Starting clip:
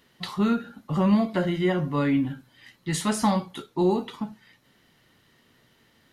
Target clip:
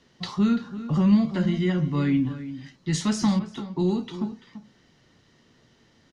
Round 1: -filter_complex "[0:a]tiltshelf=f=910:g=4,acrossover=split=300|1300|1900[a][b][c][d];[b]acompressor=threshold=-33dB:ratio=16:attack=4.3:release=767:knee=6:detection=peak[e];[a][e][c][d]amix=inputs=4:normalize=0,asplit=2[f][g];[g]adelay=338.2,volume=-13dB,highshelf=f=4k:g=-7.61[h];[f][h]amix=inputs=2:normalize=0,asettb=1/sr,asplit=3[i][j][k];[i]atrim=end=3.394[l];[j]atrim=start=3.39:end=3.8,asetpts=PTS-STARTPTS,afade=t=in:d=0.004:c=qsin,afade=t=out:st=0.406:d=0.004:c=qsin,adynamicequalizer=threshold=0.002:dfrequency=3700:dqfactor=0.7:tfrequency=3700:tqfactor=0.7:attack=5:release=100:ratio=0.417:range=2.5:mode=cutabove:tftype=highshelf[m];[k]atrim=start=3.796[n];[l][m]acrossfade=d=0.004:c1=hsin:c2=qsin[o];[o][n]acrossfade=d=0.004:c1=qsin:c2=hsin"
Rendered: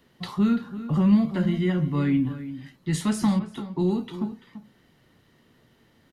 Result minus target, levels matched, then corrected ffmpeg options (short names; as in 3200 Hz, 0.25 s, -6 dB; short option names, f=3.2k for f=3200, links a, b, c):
8000 Hz band -2.5 dB
-filter_complex "[0:a]lowpass=f=6k:t=q:w=2.5,tiltshelf=f=910:g=4,acrossover=split=300|1300|1900[a][b][c][d];[b]acompressor=threshold=-33dB:ratio=16:attack=4.3:release=767:knee=6:detection=peak[e];[a][e][c][d]amix=inputs=4:normalize=0,asplit=2[f][g];[g]adelay=338.2,volume=-13dB,highshelf=f=4k:g=-7.61[h];[f][h]amix=inputs=2:normalize=0,asettb=1/sr,asplit=3[i][j][k];[i]atrim=end=3.394[l];[j]atrim=start=3.39:end=3.8,asetpts=PTS-STARTPTS,afade=t=in:d=0.004:c=qsin,afade=t=out:st=0.406:d=0.004:c=qsin,adynamicequalizer=threshold=0.002:dfrequency=3700:dqfactor=0.7:tfrequency=3700:tqfactor=0.7:attack=5:release=100:ratio=0.417:range=2.5:mode=cutabove:tftype=highshelf[m];[k]atrim=start=3.796[n];[l][m]acrossfade=d=0.004:c1=hsin:c2=qsin[o];[o][n]acrossfade=d=0.004:c1=qsin:c2=hsin"